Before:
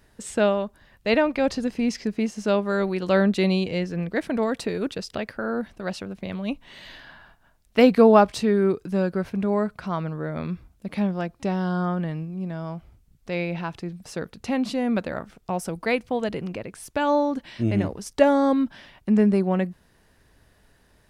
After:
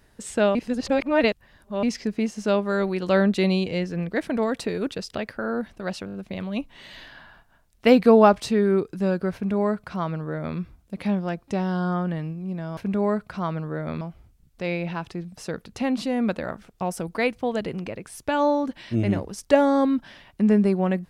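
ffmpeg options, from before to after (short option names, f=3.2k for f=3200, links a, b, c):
-filter_complex "[0:a]asplit=9[a][b][c][d][e][f][g][h][i];[a]atrim=end=0.552[j];[b]atrim=start=0.548:end=1.832,asetpts=PTS-STARTPTS,areverse[k];[c]atrim=start=1.828:end=6.082[l];[d]atrim=start=6.058:end=6.082[m];[e]atrim=start=6.058:end=6.082[n];[f]atrim=start=6.058:end=6.082[o];[g]atrim=start=6.058:end=12.692[p];[h]atrim=start=9.258:end=10.502[q];[i]atrim=start=12.688[r];[j][k]acrossfade=d=0.004:c1=hsin:c2=hsin[s];[s][l]acrossfade=d=0.004:c1=hsin:c2=hsin[t];[t][m]acrossfade=d=0.004:c1=hsin:c2=hsin[u];[u][n]acrossfade=d=0.004:c1=hsin:c2=hsin[v];[v][o]acrossfade=d=0.004:c1=hsin:c2=hsin[w];[w][p]acrossfade=d=0.004:c1=hsin:c2=hsin[x];[x][q]acrossfade=d=0.004:c1=hsin:c2=hsin[y];[y][r]acrossfade=d=0.004:c1=hsin:c2=hsin"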